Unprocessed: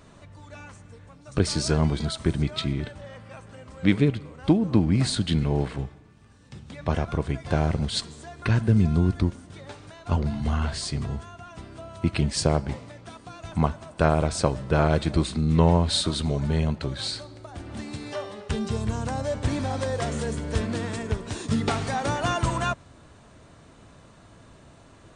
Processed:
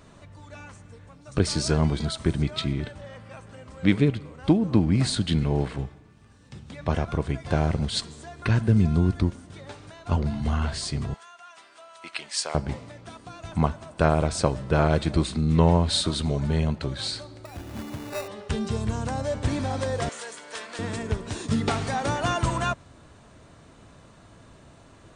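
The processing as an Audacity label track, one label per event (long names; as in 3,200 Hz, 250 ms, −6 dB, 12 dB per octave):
11.140000	12.550000	high-pass filter 1,000 Hz
17.450000	18.280000	sample-rate reduction 3,200 Hz
20.090000	20.790000	high-pass filter 850 Hz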